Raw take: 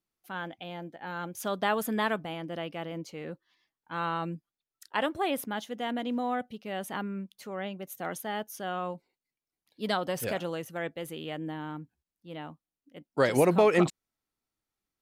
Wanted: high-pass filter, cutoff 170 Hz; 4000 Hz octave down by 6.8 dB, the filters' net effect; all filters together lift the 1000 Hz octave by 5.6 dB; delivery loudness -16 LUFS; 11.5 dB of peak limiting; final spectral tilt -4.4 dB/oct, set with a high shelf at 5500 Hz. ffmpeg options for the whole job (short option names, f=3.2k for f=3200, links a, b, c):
-af "highpass=170,equalizer=f=1k:t=o:g=8,equalizer=f=4k:t=o:g=-8.5,highshelf=f=5.5k:g=-6,volume=17dB,alimiter=limit=-2dB:level=0:latency=1"